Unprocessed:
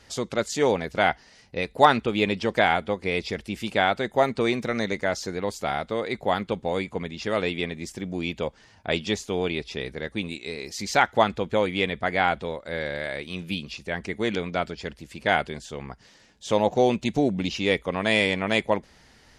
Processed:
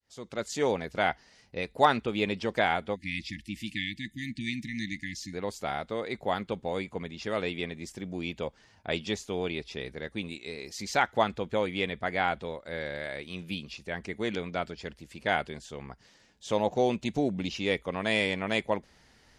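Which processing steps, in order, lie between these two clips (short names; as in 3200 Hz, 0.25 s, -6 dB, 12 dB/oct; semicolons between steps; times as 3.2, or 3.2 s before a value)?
opening faded in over 0.53 s; spectral delete 2.96–5.34, 340–1700 Hz; gain -5.5 dB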